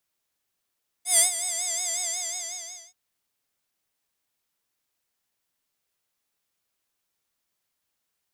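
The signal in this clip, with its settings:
subtractive patch with vibrato F5, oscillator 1 square, interval 0 semitones, oscillator 2 level −13.5 dB, sub −12 dB, filter bandpass, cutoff 6,500 Hz, Q 5.1, filter envelope 0.5 octaves, filter decay 0.66 s, attack 136 ms, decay 0.12 s, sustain −13 dB, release 0.92 s, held 0.96 s, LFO 5.5 Hz, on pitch 94 cents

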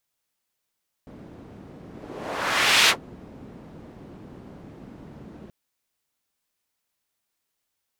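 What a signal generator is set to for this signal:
pass-by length 4.43 s, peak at 0:01.82, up 1.09 s, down 0.10 s, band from 230 Hz, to 3,000 Hz, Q 1, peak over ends 26.5 dB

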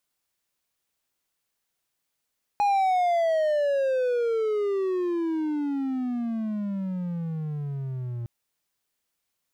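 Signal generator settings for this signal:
pitch glide with a swell triangle, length 5.66 s, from 829 Hz, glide −34 semitones, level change −10.5 dB, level −17 dB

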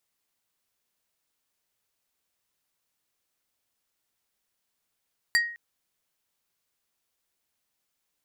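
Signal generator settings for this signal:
struck wood plate, length 0.21 s, lowest mode 1,880 Hz, decay 0.49 s, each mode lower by 4 dB, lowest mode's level −17 dB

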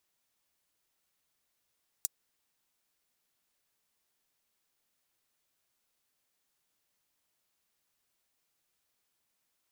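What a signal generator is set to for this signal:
closed synth hi-hat, high-pass 6,600 Hz, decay 0.03 s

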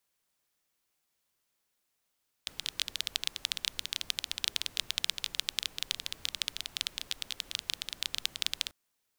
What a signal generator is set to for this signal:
rain-like ticks over hiss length 6.24 s, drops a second 15, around 3,500 Hz, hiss −18 dB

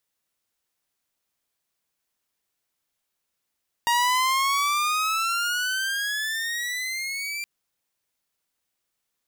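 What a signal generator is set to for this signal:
pitch glide with a swell saw, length 3.57 s, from 940 Hz, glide +16 semitones, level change −10 dB, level −16 dB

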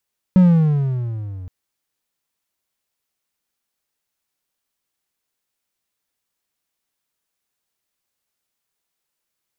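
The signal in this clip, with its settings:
pitch glide with a swell triangle, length 1.12 s, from 188 Hz, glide −13 semitones, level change −23.5 dB, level −4.5 dB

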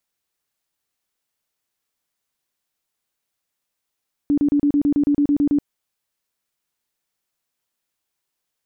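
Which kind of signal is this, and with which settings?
tone bursts 289 Hz, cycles 22, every 0.11 s, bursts 12, −13.5 dBFS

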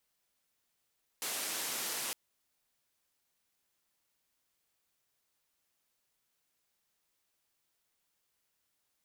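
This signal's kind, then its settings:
band-limited noise 230–13,000 Hz, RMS −37.5 dBFS 0.91 s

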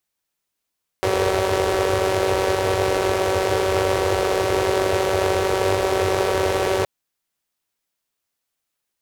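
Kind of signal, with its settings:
pulse-train model of a four-cylinder engine, steady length 5.82 s, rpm 5,700, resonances 92/440 Hz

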